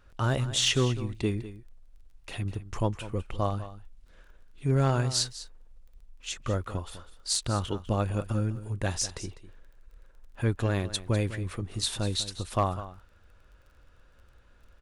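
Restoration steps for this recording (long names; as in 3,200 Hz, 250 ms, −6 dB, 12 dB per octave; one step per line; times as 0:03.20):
clipped peaks rebuilt −16 dBFS
click removal
echo removal 200 ms −14.5 dB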